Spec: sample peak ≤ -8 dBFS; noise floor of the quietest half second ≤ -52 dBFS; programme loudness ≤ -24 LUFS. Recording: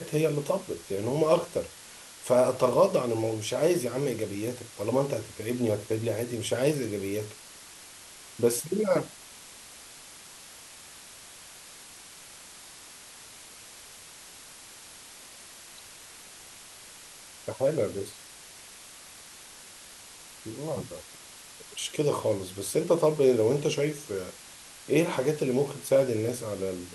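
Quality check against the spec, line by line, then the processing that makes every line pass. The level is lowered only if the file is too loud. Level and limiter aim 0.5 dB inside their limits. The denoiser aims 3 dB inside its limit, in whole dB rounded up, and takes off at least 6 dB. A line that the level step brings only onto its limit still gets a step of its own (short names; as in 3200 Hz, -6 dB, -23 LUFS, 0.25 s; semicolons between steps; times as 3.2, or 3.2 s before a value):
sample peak -9.5 dBFS: OK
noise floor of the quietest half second -48 dBFS: fail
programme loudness -28.0 LUFS: OK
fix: denoiser 7 dB, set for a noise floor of -48 dBFS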